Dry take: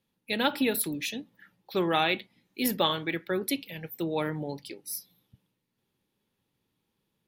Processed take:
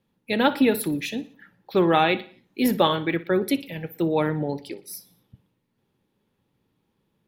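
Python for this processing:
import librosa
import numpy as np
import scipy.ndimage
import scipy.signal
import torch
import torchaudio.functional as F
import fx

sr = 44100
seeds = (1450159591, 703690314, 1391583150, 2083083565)

p1 = fx.high_shelf(x, sr, hz=2400.0, db=-10.5)
p2 = p1 + fx.echo_feedback(p1, sr, ms=60, feedback_pct=47, wet_db=-18.0, dry=0)
y = p2 * librosa.db_to_amplitude(8.0)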